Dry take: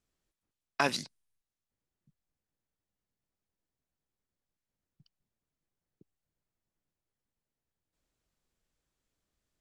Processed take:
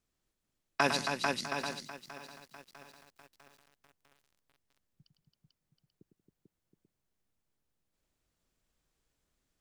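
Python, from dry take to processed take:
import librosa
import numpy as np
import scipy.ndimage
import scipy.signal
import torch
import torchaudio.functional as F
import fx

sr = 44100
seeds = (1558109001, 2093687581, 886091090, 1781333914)

y = fx.echo_multitap(x, sr, ms=(104, 184, 272, 443, 721, 837), db=(-7.5, -19.0, -6.5, -3.5, -8.5, -11.0))
y = fx.echo_crushed(y, sr, ms=650, feedback_pct=55, bits=8, wet_db=-14.5)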